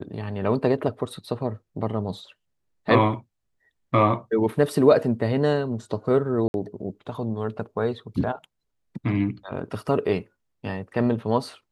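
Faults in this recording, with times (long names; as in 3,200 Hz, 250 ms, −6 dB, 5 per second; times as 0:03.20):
0:06.48–0:06.54: drop-out 61 ms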